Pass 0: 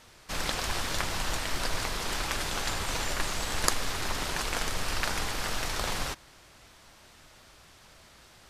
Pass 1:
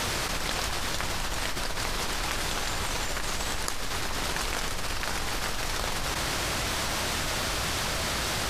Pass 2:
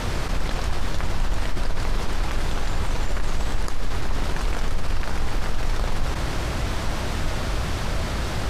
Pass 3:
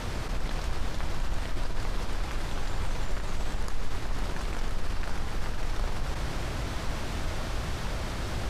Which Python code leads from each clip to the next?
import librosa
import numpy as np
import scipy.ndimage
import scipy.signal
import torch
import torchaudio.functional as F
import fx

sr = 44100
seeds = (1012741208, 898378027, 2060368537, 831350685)

y1 = fx.env_flatten(x, sr, amount_pct=100)
y1 = F.gain(torch.from_numpy(y1), -7.0).numpy()
y2 = fx.tilt_eq(y1, sr, slope=-2.5)
y3 = fx.echo_split(y2, sr, split_hz=820.0, low_ms=132, high_ms=505, feedback_pct=52, wet_db=-8.0)
y3 = F.gain(torch.from_numpy(y3), -7.5).numpy()